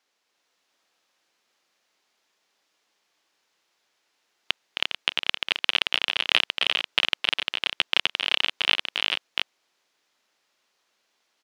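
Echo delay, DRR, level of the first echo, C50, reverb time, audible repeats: 265 ms, no reverb, -6.5 dB, no reverb, no reverb, 5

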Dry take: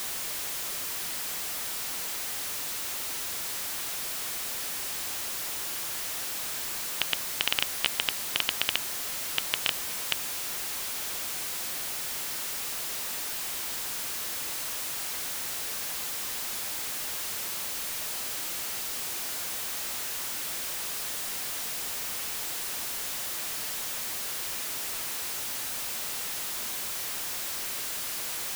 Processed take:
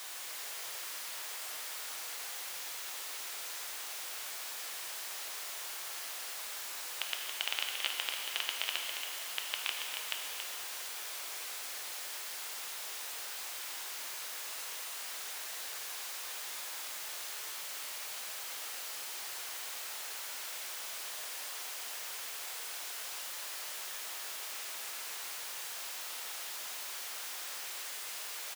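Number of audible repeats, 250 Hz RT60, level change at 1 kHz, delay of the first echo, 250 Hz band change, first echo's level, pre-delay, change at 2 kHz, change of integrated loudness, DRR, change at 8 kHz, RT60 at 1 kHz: 1, 2.7 s, -5.5 dB, 278 ms, -17.0 dB, -7.0 dB, 5 ms, -5.5 dB, -8.0 dB, 0.0 dB, -8.0 dB, 2.7 s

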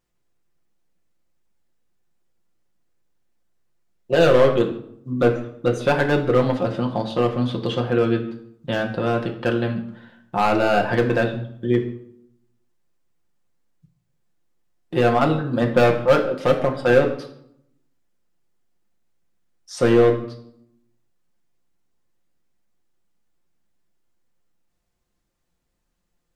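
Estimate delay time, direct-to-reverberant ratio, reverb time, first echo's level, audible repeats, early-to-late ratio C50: no echo, 1.5 dB, 0.70 s, no echo, no echo, 10.0 dB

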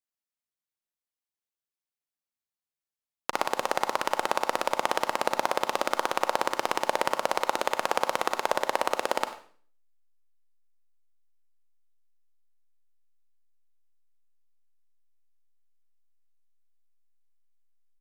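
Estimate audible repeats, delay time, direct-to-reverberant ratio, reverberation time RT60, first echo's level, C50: 1, 94 ms, 9.5 dB, 0.45 s, -19.5 dB, 11.0 dB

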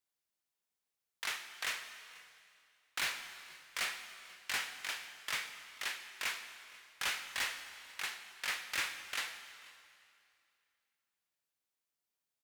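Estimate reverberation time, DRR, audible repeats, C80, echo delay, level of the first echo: 2.4 s, 8.0 dB, 1, 9.5 dB, 488 ms, -23.0 dB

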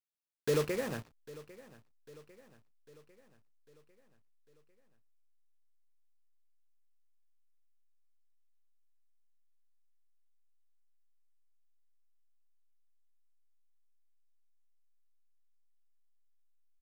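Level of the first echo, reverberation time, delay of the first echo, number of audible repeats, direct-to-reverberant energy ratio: -19.0 dB, no reverb, 799 ms, 4, no reverb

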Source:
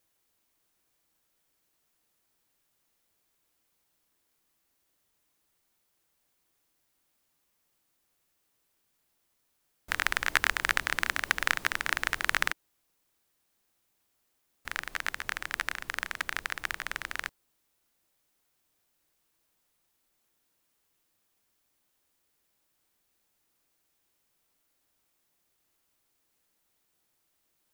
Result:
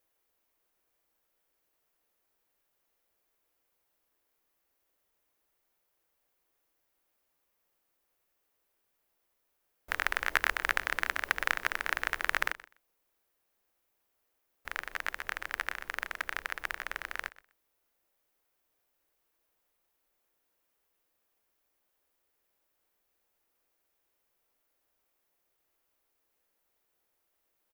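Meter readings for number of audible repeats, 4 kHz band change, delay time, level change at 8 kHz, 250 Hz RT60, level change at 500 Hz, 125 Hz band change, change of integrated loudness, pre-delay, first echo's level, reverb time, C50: 2, -5.5 dB, 125 ms, -7.0 dB, no reverb, +0.5 dB, no reading, -2.5 dB, no reverb, -19.0 dB, no reverb, no reverb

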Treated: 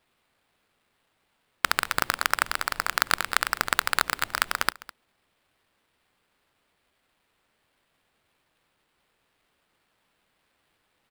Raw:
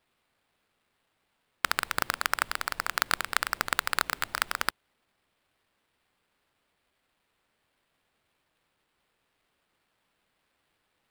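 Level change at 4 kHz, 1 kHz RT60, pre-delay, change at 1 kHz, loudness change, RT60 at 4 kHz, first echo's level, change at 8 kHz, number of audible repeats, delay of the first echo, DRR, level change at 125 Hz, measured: +3.5 dB, no reverb, no reverb, +3.5 dB, +3.5 dB, no reverb, -19.0 dB, +3.5 dB, 1, 206 ms, no reverb, +3.5 dB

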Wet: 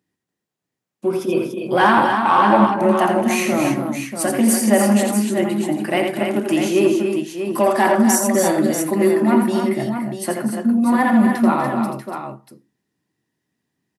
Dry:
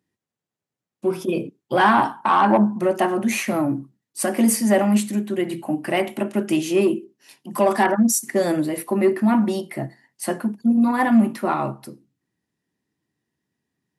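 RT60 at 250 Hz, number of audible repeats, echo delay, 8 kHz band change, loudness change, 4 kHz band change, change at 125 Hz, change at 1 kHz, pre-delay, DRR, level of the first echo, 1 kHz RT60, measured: no reverb, 4, 84 ms, +4.0 dB, +3.0 dB, +4.0 dB, +3.0 dB, +3.5 dB, no reverb, no reverb, -5.5 dB, no reverb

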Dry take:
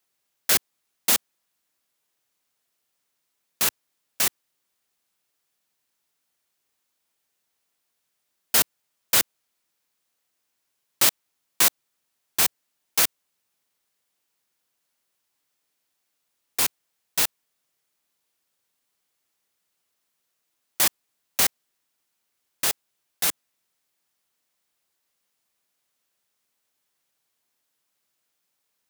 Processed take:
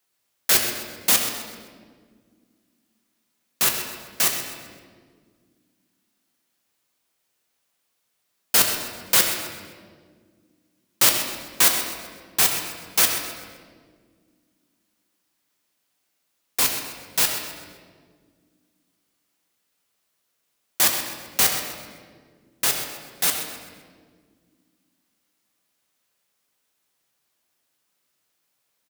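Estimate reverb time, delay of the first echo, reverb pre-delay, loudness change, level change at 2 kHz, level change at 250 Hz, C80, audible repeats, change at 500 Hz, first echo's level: 1.8 s, 129 ms, 4 ms, +2.0 dB, +3.5 dB, +4.5 dB, 5.5 dB, 1, +4.5 dB, -11.5 dB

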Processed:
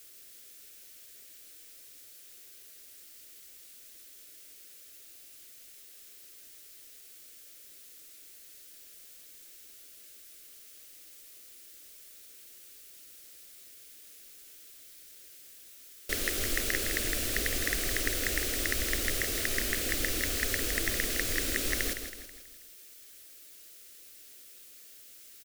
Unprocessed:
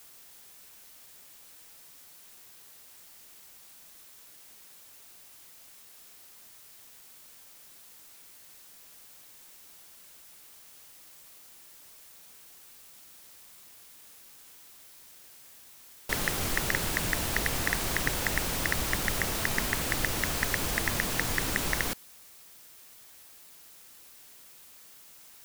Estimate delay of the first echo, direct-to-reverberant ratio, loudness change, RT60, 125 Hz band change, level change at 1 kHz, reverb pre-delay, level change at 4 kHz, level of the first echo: 162 ms, no reverb, -1.0 dB, no reverb, -5.5 dB, -10.0 dB, no reverb, 0.0 dB, -8.5 dB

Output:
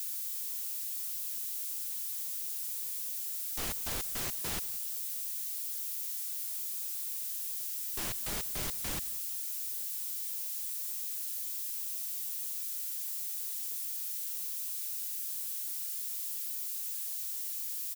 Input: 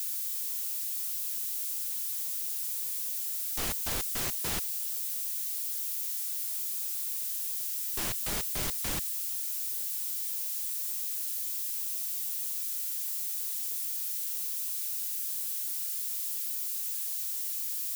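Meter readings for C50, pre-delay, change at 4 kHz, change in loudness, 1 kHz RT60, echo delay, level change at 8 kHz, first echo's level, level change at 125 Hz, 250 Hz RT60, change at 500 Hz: no reverb, no reverb, -3.5 dB, -3.5 dB, no reverb, 175 ms, -3.5 dB, -20.0 dB, -3.5 dB, no reverb, -3.5 dB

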